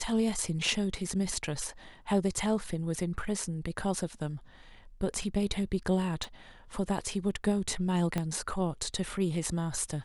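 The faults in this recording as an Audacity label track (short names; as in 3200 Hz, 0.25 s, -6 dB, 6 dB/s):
6.240000	6.240000	pop
8.180000	8.180000	pop -17 dBFS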